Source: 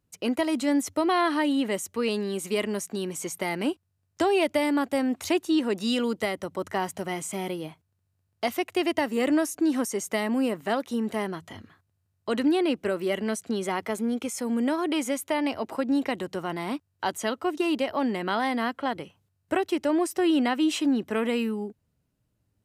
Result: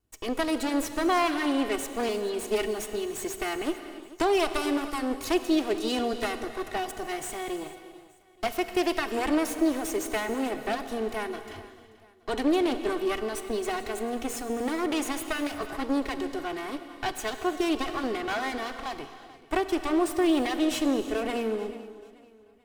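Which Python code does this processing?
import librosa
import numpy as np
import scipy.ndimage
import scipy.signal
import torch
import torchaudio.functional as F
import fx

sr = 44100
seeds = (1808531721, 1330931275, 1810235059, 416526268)

y = fx.lower_of_two(x, sr, delay_ms=2.7)
y = fx.echo_feedback(y, sr, ms=437, feedback_pct=39, wet_db=-18.5)
y = fx.rev_gated(y, sr, seeds[0], gate_ms=390, shape='flat', drr_db=9.0)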